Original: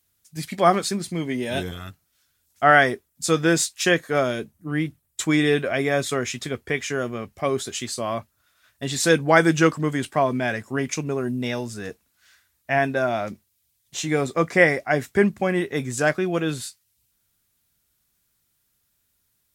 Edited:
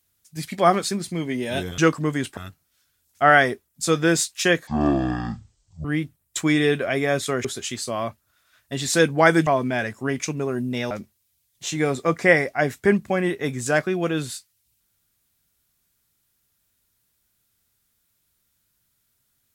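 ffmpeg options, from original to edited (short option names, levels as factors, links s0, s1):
-filter_complex "[0:a]asplit=8[s0][s1][s2][s3][s4][s5][s6][s7];[s0]atrim=end=1.782[s8];[s1]atrim=start=9.568:end=10.162[s9];[s2]atrim=start=1.778:end=4.084[s10];[s3]atrim=start=4.08:end=4.68,asetpts=PTS-STARTPTS,asetrate=22491,aresample=44100,atrim=end_sample=51882,asetpts=PTS-STARTPTS[s11];[s4]atrim=start=4.676:end=6.282[s12];[s5]atrim=start=7.548:end=9.572[s13];[s6]atrim=start=10.158:end=11.602[s14];[s7]atrim=start=13.218[s15];[s8][s9]acrossfade=d=0.004:c1=hsin:c2=hsin[s16];[s16][s10]acrossfade=d=0.004:c1=hsin:c2=hsin[s17];[s17][s11]acrossfade=d=0.004:c1=hsin:c2=hsin[s18];[s18][s12]acrossfade=d=0.004:c1=hsin:c2=hsin[s19];[s19][s13]acrossfade=d=0.004:c1=hsin:c2=hsin[s20];[s20][s14]acrossfade=d=0.004:c1=hsin:c2=hsin[s21];[s21][s15]acrossfade=d=0.004:c1=hsin:c2=hsin"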